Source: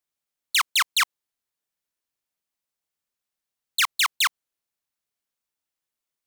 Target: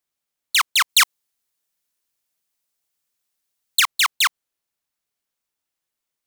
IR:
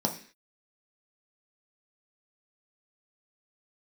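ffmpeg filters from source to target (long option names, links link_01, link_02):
-filter_complex "[0:a]asettb=1/sr,asplit=3[link_01][link_02][link_03];[link_01]atrim=end=0.894[link_04];[link_02]atrim=start=0.89:end=3.8,asetpts=PTS-STARTPTS,afade=type=in:duration=0.004:curve=qsin,afade=type=out:start_time=2.906:duration=0.004:curve=qsin,highshelf=frequency=3700:gain=7[link_05];[link_03]atrim=start=3.796[link_06];[link_04][link_05]acrossfade=duration=0.004:curve1=hsin:curve2=qsin[link_07];[link_07][link_06]acrossfade=duration=0.004:curve1=qsin:curve2=hsin,acrusher=bits=6:mode=log:mix=0:aa=0.000001,volume=3.5dB"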